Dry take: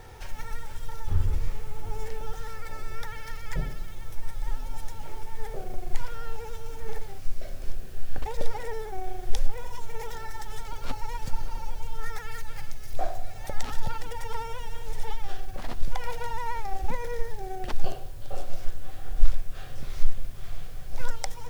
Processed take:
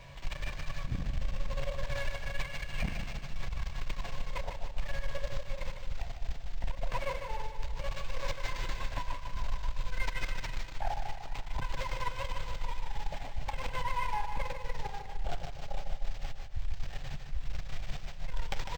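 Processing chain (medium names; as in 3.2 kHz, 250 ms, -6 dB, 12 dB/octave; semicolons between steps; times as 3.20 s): gliding tape speed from 128% -> 101%; treble shelf 4.9 kHz +11 dB; reverse; compression 6:1, threshold -25 dBFS, peak gain reduction 17.5 dB; reverse; static phaser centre 1.3 kHz, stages 6; feedback comb 140 Hz, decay 0.19 s, harmonics all, mix 70%; Chebyshev shaper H 7 -10 dB, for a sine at -22 dBFS; on a send: feedback delay 151 ms, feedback 55%, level -7.5 dB; on the sum: decimation joined by straight lines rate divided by 4×; trim +2 dB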